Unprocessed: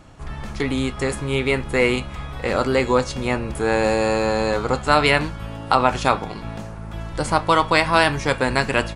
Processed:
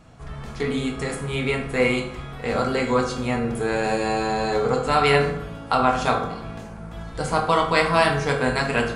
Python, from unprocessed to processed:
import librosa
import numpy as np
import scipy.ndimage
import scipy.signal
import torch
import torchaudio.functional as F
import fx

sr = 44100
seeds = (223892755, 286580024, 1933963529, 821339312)

y = fx.rev_fdn(x, sr, rt60_s=0.74, lf_ratio=1.3, hf_ratio=0.6, size_ms=13.0, drr_db=-0.5)
y = F.gain(torch.from_numpy(y), -5.5).numpy()